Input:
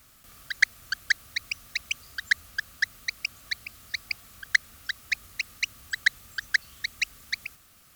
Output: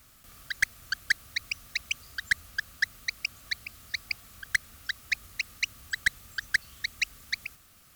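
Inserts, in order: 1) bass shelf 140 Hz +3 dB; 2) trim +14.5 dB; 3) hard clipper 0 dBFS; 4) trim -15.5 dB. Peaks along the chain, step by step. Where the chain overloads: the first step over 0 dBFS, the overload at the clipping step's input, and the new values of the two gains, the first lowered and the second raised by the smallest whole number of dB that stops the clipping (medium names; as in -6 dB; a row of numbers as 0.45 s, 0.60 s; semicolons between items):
-5.0 dBFS, +9.5 dBFS, 0.0 dBFS, -15.5 dBFS; step 2, 9.5 dB; step 2 +4.5 dB, step 4 -5.5 dB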